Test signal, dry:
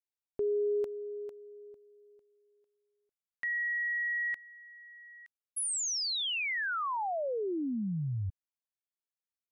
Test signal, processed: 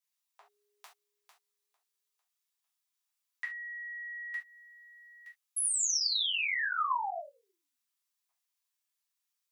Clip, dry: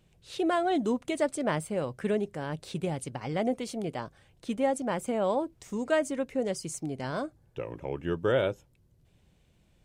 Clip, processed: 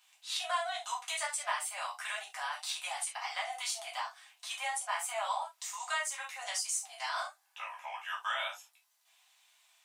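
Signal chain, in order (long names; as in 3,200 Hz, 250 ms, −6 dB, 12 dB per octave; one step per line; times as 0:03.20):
Chebyshev high-pass filter 720 Hz, order 6
high-shelf EQ 2,000 Hz +9 dB
downward compressor 3 to 1, threshold −35 dBFS
reverb whose tail is shaped and stops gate 100 ms falling, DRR −5 dB
level −3 dB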